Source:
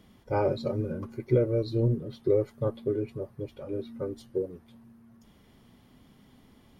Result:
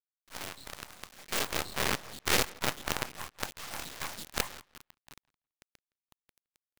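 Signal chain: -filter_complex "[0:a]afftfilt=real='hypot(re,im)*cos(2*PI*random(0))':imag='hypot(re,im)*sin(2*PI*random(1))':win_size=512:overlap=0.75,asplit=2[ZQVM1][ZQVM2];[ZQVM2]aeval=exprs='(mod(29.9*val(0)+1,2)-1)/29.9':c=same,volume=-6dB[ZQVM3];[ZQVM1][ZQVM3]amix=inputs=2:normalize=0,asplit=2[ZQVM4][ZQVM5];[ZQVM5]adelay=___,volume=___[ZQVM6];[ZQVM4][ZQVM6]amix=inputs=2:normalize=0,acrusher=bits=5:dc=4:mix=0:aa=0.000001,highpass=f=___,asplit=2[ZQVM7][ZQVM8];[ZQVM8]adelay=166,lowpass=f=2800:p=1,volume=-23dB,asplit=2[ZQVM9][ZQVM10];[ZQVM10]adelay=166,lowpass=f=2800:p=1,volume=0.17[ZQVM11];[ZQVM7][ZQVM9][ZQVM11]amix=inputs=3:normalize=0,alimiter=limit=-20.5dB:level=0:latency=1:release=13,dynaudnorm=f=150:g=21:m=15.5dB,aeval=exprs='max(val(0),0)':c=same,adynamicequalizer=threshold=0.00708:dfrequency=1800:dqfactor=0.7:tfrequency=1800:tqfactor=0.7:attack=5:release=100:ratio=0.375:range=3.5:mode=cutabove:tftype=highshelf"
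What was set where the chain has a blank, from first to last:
26, -2.5dB, 1400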